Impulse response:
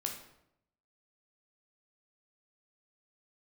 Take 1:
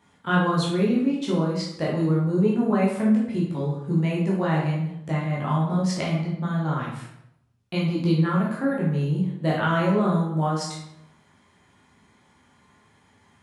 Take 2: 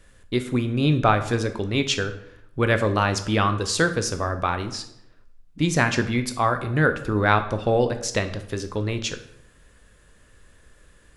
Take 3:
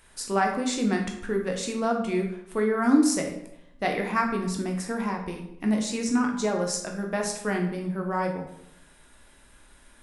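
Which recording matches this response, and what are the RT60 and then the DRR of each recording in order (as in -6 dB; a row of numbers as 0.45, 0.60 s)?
3; 0.80, 0.80, 0.80 s; -5.0, 8.0, 1.5 dB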